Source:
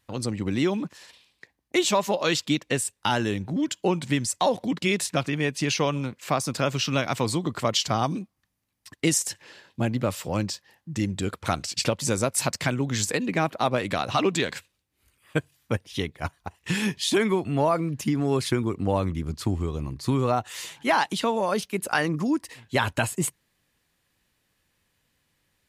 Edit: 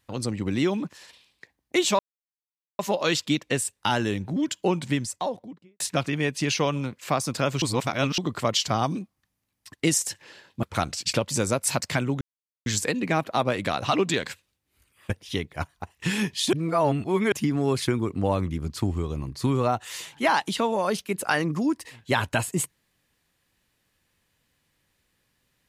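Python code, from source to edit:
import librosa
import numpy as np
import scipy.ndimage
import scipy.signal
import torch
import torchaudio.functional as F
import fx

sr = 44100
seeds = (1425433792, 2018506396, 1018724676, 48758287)

y = fx.studio_fade_out(x, sr, start_s=3.96, length_s=1.04)
y = fx.edit(y, sr, fx.insert_silence(at_s=1.99, length_s=0.8),
    fx.reverse_span(start_s=6.82, length_s=0.56),
    fx.cut(start_s=9.83, length_s=1.51),
    fx.insert_silence(at_s=12.92, length_s=0.45),
    fx.cut(start_s=15.36, length_s=0.38),
    fx.reverse_span(start_s=17.17, length_s=0.79), tone=tone)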